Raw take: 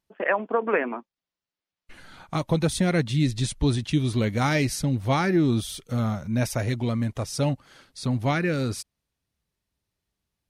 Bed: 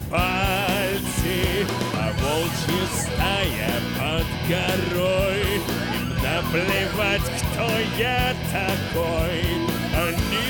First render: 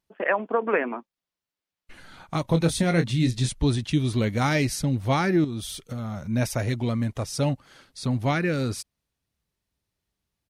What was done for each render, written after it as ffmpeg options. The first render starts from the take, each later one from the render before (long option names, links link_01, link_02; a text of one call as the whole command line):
ffmpeg -i in.wav -filter_complex "[0:a]asplit=3[link_01][link_02][link_03];[link_01]afade=type=out:start_time=2.44:duration=0.02[link_04];[link_02]asplit=2[link_05][link_06];[link_06]adelay=24,volume=-8dB[link_07];[link_05][link_07]amix=inputs=2:normalize=0,afade=type=in:start_time=2.44:duration=0.02,afade=type=out:start_time=3.48:duration=0.02[link_08];[link_03]afade=type=in:start_time=3.48:duration=0.02[link_09];[link_04][link_08][link_09]amix=inputs=3:normalize=0,asettb=1/sr,asplit=3[link_10][link_11][link_12];[link_10]atrim=end=5.444[link_13];[link_11]atrim=start=5.44:end=6.26,asetpts=PTS-STARTPTS,afade=type=in:duration=0.004:curve=qsin,afade=type=out:start_time=0.816:duration=0.004:curve=qsin,acompressor=threshold=-27dB:ratio=10:attack=3.2:release=140:knee=1:detection=peak[link_14];[link_12]atrim=start=6.256[link_15];[link_13][link_14]acrossfade=duration=0.004:curve1=hsin:curve2=qsin[link_16];[link_16][link_15]acrossfade=duration=0.004:curve1=qsin:curve2=hsin" out.wav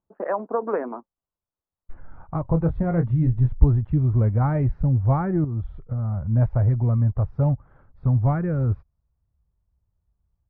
ffmpeg -i in.wav -af "asubboost=boost=8.5:cutoff=93,lowpass=frequency=1200:width=0.5412,lowpass=frequency=1200:width=1.3066" out.wav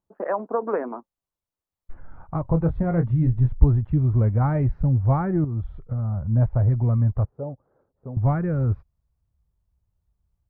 ffmpeg -i in.wav -filter_complex "[0:a]asettb=1/sr,asplit=3[link_01][link_02][link_03];[link_01]atrim=end=6.014[link_04];[link_02]atrim=start=6.01:end=6.72,asetpts=PTS-STARTPTS,afade=type=in:duration=0.004:curve=qsin,afade=type=out:start_time=0.706:duration=0.004:curve=qsin,lowpass=frequency=1600:poles=1[link_05];[link_03]atrim=start=6.716[link_06];[link_04][link_05]acrossfade=duration=0.004:curve1=hsin:curve2=qsin[link_07];[link_07][link_06]acrossfade=duration=0.004:curve1=qsin:curve2=hsin,asettb=1/sr,asplit=3[link_08][link_09][link_10];[link_08]atrim=end=7.254[link_11];[link_09]atrim=start=7.25:end=8.17,asetpts=PTS-STARTPTS,afade=type=in:duration=0.004:curve=qsin,afade=type=out:start_time=0.916:duration=0.004:curve=qsin,bandpass=frequency=450:width_type=q:width=2.1[link_12];[link_10]atrim=start=8.166[link_13];[link_11][link_12]acrossfade=duration=0.004:curve1=hsin:curve2=qsin[link_14];[link_14][link_13]acrossfade=duration=0.004:curve1=qsin:curve2=hsin" out.wav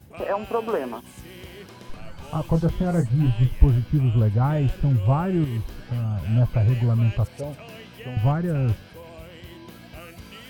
ffmpeg -i in.wav -i bed.wav -filter_complex "[1:a]volume=-19dB[link_01];[0:a][link_01]amix=inputs=2:normalize=0" out.wav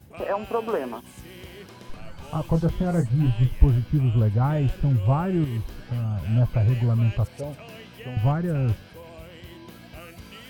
ffmpeg -i in.wav -af "volume=-1dB" out.wav